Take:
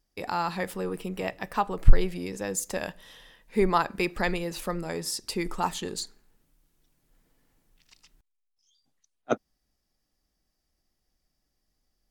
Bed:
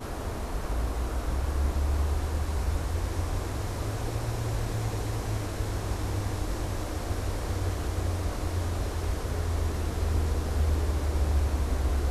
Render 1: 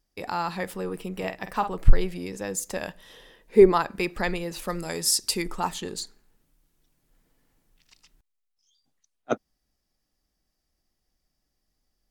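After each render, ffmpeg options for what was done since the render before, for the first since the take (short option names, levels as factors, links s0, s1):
-filter_complex "[0:a]asettb=1/sr,asplit=3[s0][s1][s2];[s0]atrim=end=1.134[s3];[s1]atrim=start=1.13:end=1.77,asetpts=PTS-STARTPTS,afade=t=in:d=0.004:c=qsin,afade=t=out:st=0.636:d=0.004:c=qsin,asplit=2[s4][s5];[s5]adelay=49,volume=0.355[s6];[s4][s6]amix=inputs=2:normalize=0,atrim=end_sample=28224[s7];[s2]atrim=start=1.766[s8];[s3][s7]acrossfade=d=0.004:c1=hsin:c2=qsin[s9];[s9][s8]acrossfade=d=0.004:c1=qsin:c2=hsin,asettb=1/sr,asplit=3[s10][s11][s12];[s10]atrim=end=3.104[s13];[s11]atrim=start=3.1:end=3.72,asetpts=PTS-STARTPTS,afade=t=in:d=0.004:c=qsin,afade=t=out:st=0.616:d=0.004:c=qsin,equalizer=f=400:t=o:w=0.98:g=11[s14];[s12]atrim=start=3.716[s15];[s13][s14]acrossfade=d=0.004:c1=hsin:c2=qsin[s16];[s16][s15]acrossfade=d=0.004:c1=qsin:c2=hsin,asettb=1/sr,asplit=3[s17][s18][s19];[s17]atrim=end=4.684[s20];[s18]atrim=start=4.68:end=5.42,asetpts=PTS-STARTPTS,afade=t=in:d=0.004:c=qsin,afade=t=out:st=0.736:d=0.004:c=qsin,equalizer=f=10000:t=o:w=2.7:g=11[s21];[s19]atrim=start=5.416[s22];[s20][s21]acrossfade=d=0.004:c1=hsin:c2=qsin[s23];[s23][s22]acrossfade=d=0.004:c1=qsin:c2=hsin"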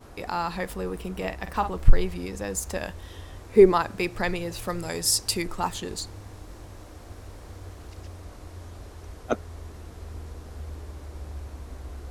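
-filter_complex "[1:a]volume=0.251[s0];[0:a][s0]amix=inputs=2:normalize=0"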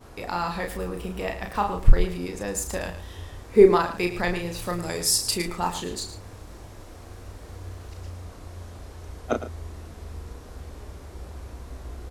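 -filter_complex "[0:a]asplit=2[s0][s1];[s1]adelay=34,volume=0.531[s2];[s0][s2]amix=inputs=2:normalize=0,aecho=1:1:110:0.251"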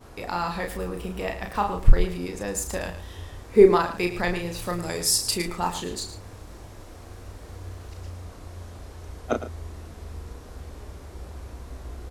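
-af anull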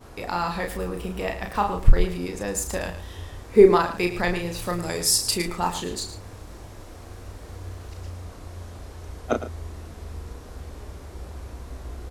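-af "volume=1.19,alimiter=limit=0.708:level=0:latency=1"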